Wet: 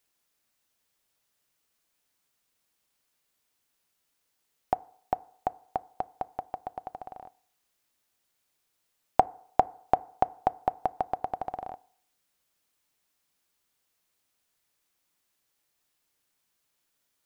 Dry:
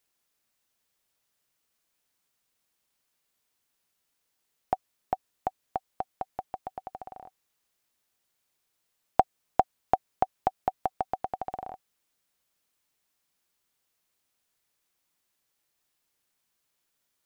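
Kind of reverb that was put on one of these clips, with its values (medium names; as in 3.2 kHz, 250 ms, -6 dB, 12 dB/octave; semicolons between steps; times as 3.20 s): FDN reverb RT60 0.62 s, low-frequency decay 0.75×, high-frequency decay 0.4×, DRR 19 dB; trim +1 dB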